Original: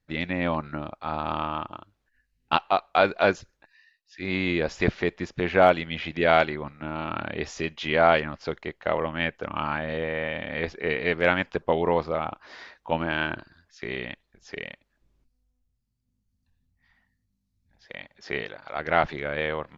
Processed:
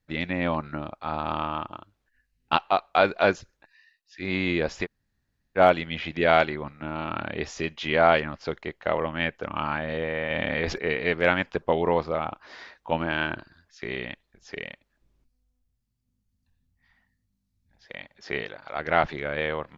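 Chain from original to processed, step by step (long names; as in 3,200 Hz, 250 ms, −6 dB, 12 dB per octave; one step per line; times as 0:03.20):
0:04.84–0:05.58: fill with room tone, crossfade 0.06 s
0:10.30–0:10.78: envelope flattener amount 70%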